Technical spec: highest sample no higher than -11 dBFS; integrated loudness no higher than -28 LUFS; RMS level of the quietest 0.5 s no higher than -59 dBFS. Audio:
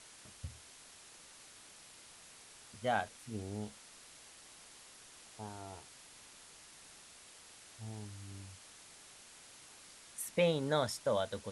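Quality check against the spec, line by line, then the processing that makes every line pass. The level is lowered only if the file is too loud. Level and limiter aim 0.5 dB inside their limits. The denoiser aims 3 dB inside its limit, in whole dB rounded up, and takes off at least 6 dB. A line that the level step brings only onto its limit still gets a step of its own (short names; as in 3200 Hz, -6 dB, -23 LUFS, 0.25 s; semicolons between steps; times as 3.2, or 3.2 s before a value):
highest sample -19.0 dBFS: OK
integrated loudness -38.5 LUFS: OK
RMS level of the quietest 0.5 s -57 dBFS: fail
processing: denoiser 6 dB, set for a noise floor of -57 dBFS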